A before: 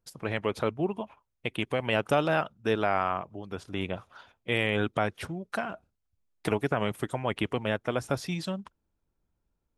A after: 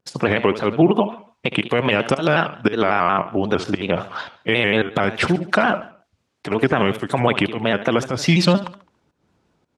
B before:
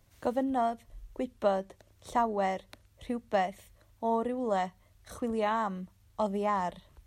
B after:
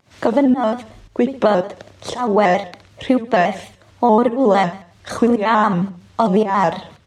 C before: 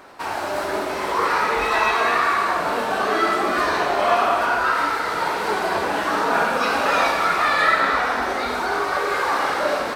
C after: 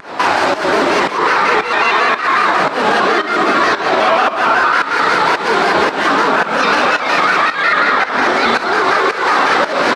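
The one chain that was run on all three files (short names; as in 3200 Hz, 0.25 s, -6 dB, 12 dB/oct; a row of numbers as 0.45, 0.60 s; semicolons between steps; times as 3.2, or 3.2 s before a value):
dynamic EQ 690 Hz, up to -4 dB, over -30 dBFS, Q 1; compressor 2.5:1, threshold -32 dBFS; limiter -24.5 dBFS; pump 112 bpm, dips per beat 1, -21 dB, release 0.218 s; BPF 140–5600 Hz; feedback echo 70 ms, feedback 37%, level -13 dB; shaped vibrato square 5.5 Hz, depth 100 cents; normalise peaks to -1.5 dBFS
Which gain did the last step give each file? +21.0, +21.5, +21.0 dB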